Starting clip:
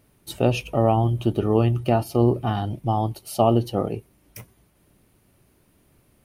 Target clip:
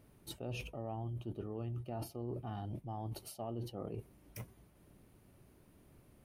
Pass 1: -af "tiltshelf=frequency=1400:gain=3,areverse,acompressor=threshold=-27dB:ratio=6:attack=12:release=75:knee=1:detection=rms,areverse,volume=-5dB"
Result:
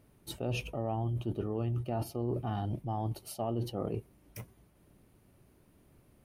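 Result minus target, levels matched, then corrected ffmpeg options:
downward compressor: peak gain reduction −8 dB
-af "tiltshelf=frequency=1400:gain=3,areverse,acompressor=threshold=-36.5dB:ratio=6:attack=12:release=75:knee=1:detection=rms,areverse,volume=-5dB"

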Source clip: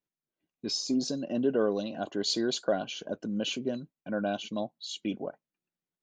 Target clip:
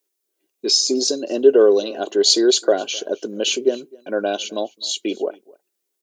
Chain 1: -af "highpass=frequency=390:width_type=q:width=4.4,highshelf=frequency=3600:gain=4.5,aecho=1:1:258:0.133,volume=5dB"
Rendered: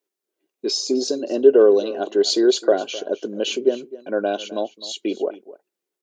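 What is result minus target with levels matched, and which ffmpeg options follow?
8,000 Hz band −7.0 dB; echo-to-direct +7 dB
-af "highpass=frequency=390:width_type=q:width=4.4,highshelf=frequency=3600:gain=16,aecho=1:1:258:0.0596,volume=5dB"

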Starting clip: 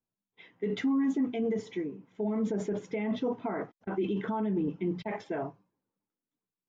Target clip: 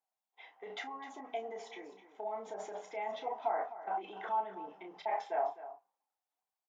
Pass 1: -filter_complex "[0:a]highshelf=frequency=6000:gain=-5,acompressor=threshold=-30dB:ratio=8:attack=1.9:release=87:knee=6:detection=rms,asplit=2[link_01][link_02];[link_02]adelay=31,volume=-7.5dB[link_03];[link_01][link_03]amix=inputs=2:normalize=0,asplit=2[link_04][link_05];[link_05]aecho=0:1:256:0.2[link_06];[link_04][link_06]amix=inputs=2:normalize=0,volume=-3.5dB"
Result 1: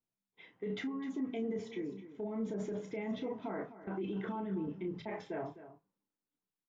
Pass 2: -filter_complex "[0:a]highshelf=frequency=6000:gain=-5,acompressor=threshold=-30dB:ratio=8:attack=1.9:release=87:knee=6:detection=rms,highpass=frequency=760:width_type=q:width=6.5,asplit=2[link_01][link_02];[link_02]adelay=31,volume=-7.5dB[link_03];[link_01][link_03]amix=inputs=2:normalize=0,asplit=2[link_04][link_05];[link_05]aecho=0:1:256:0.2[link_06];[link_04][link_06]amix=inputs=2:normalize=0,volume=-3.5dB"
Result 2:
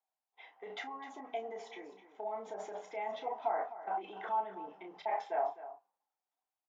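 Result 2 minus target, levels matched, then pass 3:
8,000 Hz band −2.5 dB
-filter_complex "[0:a]acompressor=threshold=-30dB:ratio=8:attack=1.9:release=87:knee=6:detection=rms,highpass=frequency=760:width_type=q:width=6.5,asplit=2[link_01][link_02];[link_02]adelay=31,volume=-7.5dB[link_03];[link_01][link_03]amix=inputs=2:normalize=0,asplit=2[link_04][link_05];[link_05]aecho=0:1:256:0.2[link_06];[link_04][link_06]amix=inputs=2:normalize=0,volume=-3.5dB"

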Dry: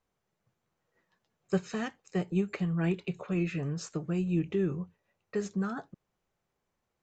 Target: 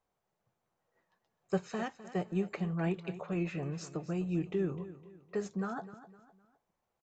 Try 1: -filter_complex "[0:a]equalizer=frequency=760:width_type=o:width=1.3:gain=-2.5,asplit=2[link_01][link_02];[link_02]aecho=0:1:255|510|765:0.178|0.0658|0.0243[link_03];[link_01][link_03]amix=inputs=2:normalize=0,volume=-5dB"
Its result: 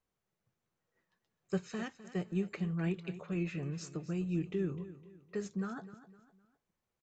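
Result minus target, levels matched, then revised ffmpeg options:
1,000 Hz band −6.0 dB
-filter_complex "[0:a]equalizer=frequency=760:width_type=o:width=1.3:gain=7.5,asplit=2[link_01][link_02];[link_02]aecho=0:1:255|510|765:0.178|0.0658|0.0243[link_03];[link_01][link_03]amix=inputs=2:normalize=0,volume=-5dB"

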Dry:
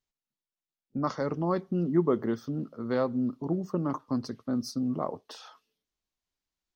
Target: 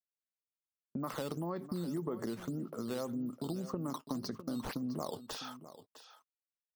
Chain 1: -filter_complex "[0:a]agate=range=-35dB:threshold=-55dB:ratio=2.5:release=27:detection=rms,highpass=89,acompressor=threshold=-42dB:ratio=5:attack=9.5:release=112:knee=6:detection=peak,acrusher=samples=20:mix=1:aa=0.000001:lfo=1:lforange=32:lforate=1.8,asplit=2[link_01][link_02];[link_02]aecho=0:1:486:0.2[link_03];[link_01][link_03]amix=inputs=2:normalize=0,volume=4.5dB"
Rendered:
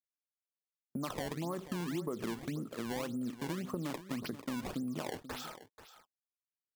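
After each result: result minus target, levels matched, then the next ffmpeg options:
sample-and-hold swept by an LFO: distortion +8 dB; echo 170 ms early
-filter_complex "[0:a]agate=range=-35dB:threshold=-55dB:ratio=2.5:release=27:detection=rms,highpass=89,acompressor=threshold=-42dB:ratio=5:attack=9.5:release=112:knee=6:detection=peak,acrusher=samples=6:mix=1:aa=0.000001:lfo=1:lforange=9.6:lforate=1.8,asplit=2[link_01][link_02];[link_02]aecho=0:1:486:0.2[link_03];[link_01][link_03]amix=inputs=2:normalize=0,volume=4.5dB"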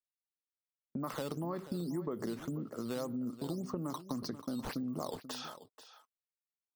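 echo 170 ms early
-filter_complex "[0:a]agate=range=-35dB:threshold=-55dB:ratio=2.5:release=27:detection=rms,highpass=89,acompressor=threshold=-42dB:ratio=5:attack=9.5:release=112:knee=6:detection=peak,acrusher=samples=6:mix=1:aa=0.000001:lfo=1:lforange=9.6:lforate=1.8,asplit=2[link_01][link_02];[link_02]aecho=0:1:656:0.2[link_03];[link_01][link_03]amix=inputs=2:normalize=0,volume=4.5dB"

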